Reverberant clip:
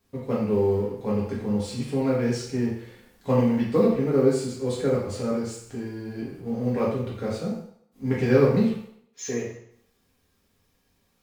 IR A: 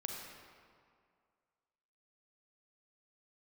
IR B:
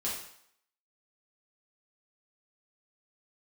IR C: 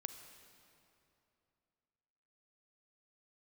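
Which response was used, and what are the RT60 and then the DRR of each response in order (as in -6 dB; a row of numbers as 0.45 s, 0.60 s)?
B; 2.1 s, 0.70 s, 2.8 s; 0.0 dB, -7.0 dB, 8.0 dB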